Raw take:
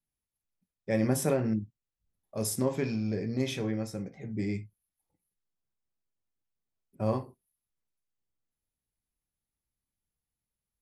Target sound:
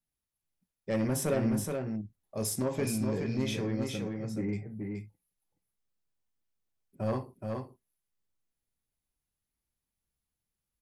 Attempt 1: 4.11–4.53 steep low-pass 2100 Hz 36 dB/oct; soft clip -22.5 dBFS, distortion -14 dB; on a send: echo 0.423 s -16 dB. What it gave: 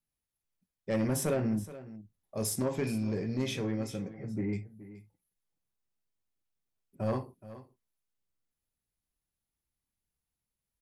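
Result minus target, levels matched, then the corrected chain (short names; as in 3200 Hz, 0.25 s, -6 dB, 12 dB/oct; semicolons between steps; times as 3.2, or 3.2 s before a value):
echo-to-direct -11.5 dB
4.11–4.53 steep low-pass 2100 Hz 36 dB/oct; soft clip -22.5 dBFS, distortion -14 dB; on a send: echo 0.423 s -4.5 dB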